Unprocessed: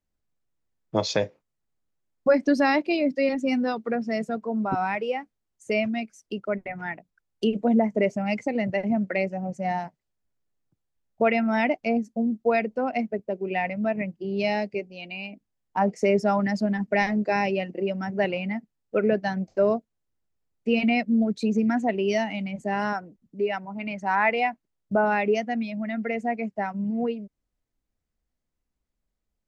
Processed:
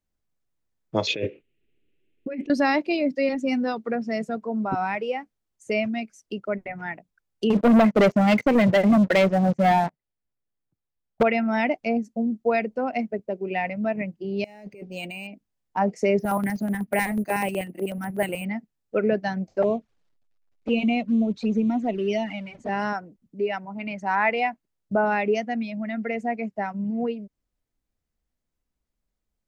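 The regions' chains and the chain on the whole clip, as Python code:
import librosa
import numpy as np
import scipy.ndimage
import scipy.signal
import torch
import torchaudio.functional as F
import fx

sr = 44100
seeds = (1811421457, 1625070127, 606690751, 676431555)

y = fx.chain(x, sr, fx.curve_eq(hz=(190.0, 390.0, 580.0, 980.0, 1700.0, 2700.0, 5100.0, 7400.0), db=(0, 12, -4, -19, -3, 12, -19, -14)),
    fx.over_compress(threshold_db=-29.0, ratio=-1.0), at=(1.07, 2.5))
y = fx.chain(y, sr, fx.lowpass(hz=3400.0, slope=12),
    fx.leveller(passes=3), at=(7.5, 11.23))
y = fx.chain(y, sr, fx.over_compress(threshold_db=-39.0, ratio=-1.0),
    fx.resample_linear(factor=4), at=(14.44, 15.27))
y = fx.chain(y, sr, fx.filter_lfo_notch(shape='square', hz=8.1, low_hz=470.0, high_hz=6000.0, q=0.78),
    fx.resample_bad(factor=4, down='filtered', up='hold'),
    fx.doppler_dist(depth_ms=0.11), at=(16.19, 18.45))
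y = fx.chain(y, sr, fx.law_mismatch(coded='mu'),
    fx.env_flanger(rest_ms=10.4, full_db=-19.0),
    fx.lowpass(hz=4700.0, slope=12), at=(19.62, 22.69))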